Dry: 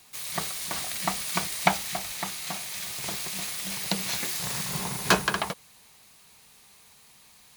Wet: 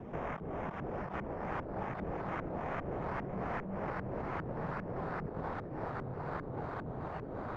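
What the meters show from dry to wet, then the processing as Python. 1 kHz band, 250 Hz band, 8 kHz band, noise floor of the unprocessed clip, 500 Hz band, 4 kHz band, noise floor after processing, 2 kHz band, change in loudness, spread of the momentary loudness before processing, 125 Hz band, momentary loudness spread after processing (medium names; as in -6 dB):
-6.5 dB, -3.0 dB, under -40 dB, -56 dBFS, -1.5 dB, -31.5 dB, -43 dBFS, -12.5 dB, -11.5 dB, 8 LU, -1.0 dB, 2 LU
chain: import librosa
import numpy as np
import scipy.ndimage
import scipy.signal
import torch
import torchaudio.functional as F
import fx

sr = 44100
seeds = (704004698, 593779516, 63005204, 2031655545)

y = scipy.signal.medfilt(x, 9)
y = fx.over_compress(y, sr, threshold_db=-44.0, ratio=-1.0)
y = fx.sample_hold(y, sr, seeds[0], rate_hz=4300.0, jitter_pct=0)
y = fx.echo_pitch(y, sr, ms=654, semitones=-3, count=3, db_per_echo=-3.0)
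y = fx.filter_lfo_lowpass(y, sr, shape='saw_up', hz=2.5, low_hz=360.0, high_hz=1500.0, q=0.98)
y = fx.band_squash(y, sr, depth_pct=70)
y = y * librosa.db_to_amplitude(1.5)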